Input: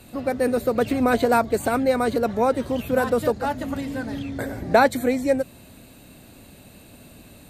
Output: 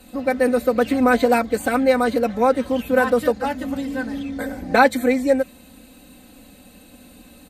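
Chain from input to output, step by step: bell 74 Hz -4 dB 0.37 oct; comb 3.9 ms, depth 90%; dynamic EQ 2000 Hz, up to +5 dB, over -32 dBFS, Q 0.94; gain -2 dB

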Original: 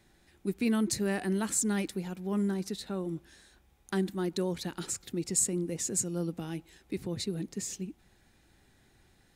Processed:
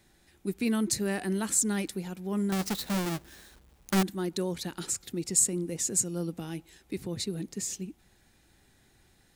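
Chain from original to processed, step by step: 2.52–4.03 half-waves squared off; high shelf 4600 Hz +5 dB

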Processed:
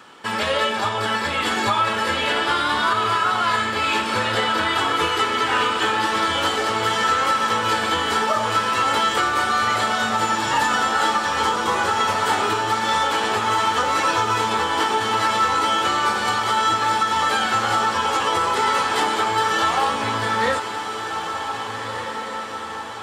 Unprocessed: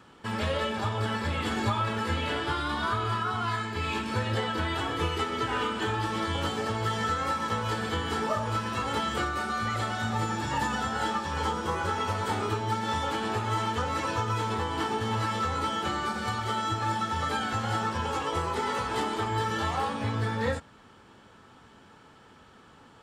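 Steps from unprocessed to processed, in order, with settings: HPF 650 Hz 6 dB/oct; diffused feedback echo 1.712 s, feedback 57%, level -8 dB; maximiser +20 dB; gain -8.5 dB

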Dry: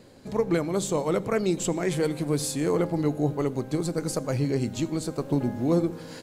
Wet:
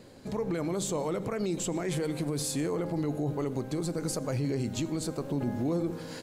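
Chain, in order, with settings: limiter -22.5 dBFS, peak gain reduction 10.5 dB

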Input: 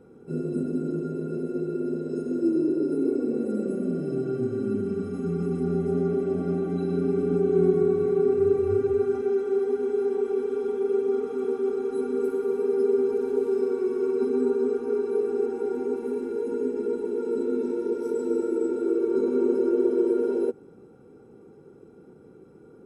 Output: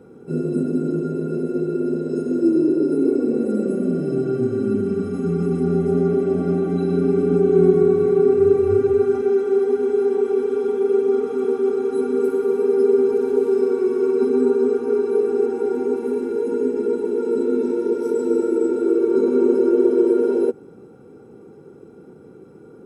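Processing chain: HPF 68 Hz; gain +6.5 dB

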